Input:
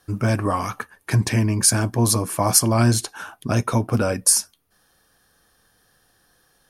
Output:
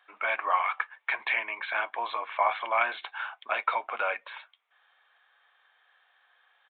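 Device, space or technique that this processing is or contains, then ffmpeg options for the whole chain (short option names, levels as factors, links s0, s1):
musical greeting card: -af "aresample=8000,aresample=44100,highpass=f=750:w=0.5412,highpass=f=750:w=1.3066,equalizer=f=2200:t=o:w=0.2:g=9.5"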